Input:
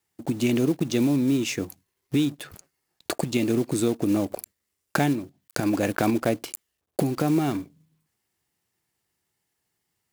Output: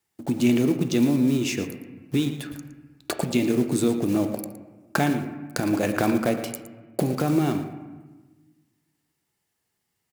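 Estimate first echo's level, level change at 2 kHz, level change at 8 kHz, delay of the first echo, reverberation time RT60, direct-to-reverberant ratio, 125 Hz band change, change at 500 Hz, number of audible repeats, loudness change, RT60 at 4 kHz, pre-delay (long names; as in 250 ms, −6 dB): −13.0 dB, +1.0 dB, 0.0 dB, 114 ms, 1.3 s, 6.5 dB, +1.0 dB, +1.0 dB, 1, +1.0 dB, 0.95 s, 4 ms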